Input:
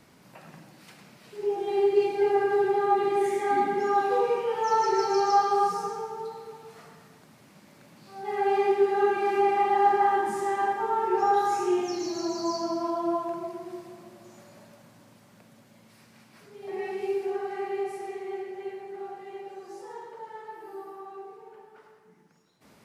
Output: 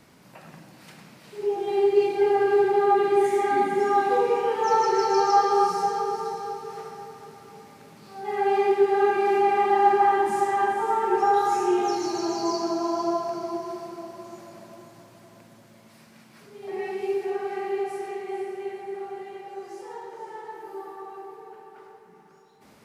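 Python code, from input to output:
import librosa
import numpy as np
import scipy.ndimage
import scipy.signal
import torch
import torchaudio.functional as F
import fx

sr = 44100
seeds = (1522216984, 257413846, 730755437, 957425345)

y = fx.echo_diffused(x, sr, ms=482, feedback_pct=43, wet_db=-8.0)
y = y * 10.0 ** (2.0 / 20.0)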